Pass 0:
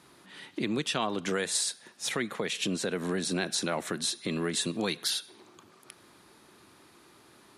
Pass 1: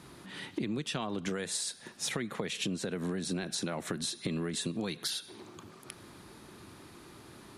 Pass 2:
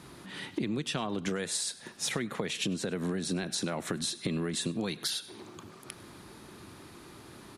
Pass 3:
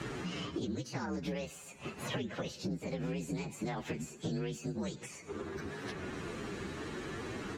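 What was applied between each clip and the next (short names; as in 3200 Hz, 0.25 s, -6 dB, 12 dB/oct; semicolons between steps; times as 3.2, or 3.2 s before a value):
low shelf 210 Hz +11.5 dB; compressor, threshold -35 dBFS, peak gain reduction 12 dB; gain +3 dB
echo 0.1 s -22.5 dB; gain +2 dB
inharmonic rescaling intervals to 122%; Bessel low-pass 5000 Hz, order 2; three-band squash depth 100%; gain -1.5 dB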